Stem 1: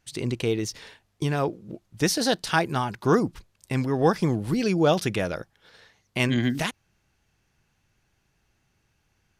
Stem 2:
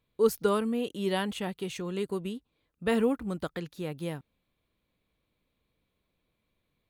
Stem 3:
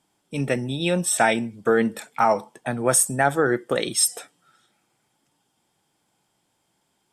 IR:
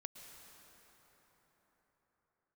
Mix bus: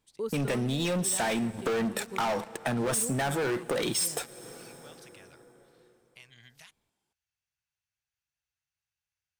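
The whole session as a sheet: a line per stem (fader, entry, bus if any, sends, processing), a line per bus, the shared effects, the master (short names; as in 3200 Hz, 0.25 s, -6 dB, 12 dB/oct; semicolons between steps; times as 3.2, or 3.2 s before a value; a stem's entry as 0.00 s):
-16.0 dB, 0.00 s, no send, HPF 75 Hz; passive tone stack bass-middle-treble 10-0-10; compressor 6:1, threshold -33 dBFS, peak gain reduction 9.5 dB; auto duck -10 dB, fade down 0.25 s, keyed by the second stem
-2.5 dB, 0.00 s, no send, dry
-4.0 dB, 0.00 s, send -11.5 dB, sample leveller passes 5; compressor, threshold -13 dBFS, peak gain reduction 5.5 dB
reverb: on, pre-delay 0.103 s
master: compressor 2:1, threshold -37 dBFS, peak gain reduction 12 dB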